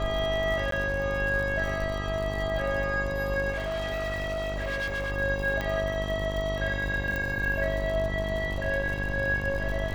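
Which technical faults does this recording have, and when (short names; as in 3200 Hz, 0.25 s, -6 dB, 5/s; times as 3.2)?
buzz 50 Hz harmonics 23 -33 dBFS
crackle 85/s -34 dBFS
0.71–0.72 gap 13 ms
3.51–5.12 clipped -27.5 dBFS
5.61 pop -17 dBFS
7.16 pop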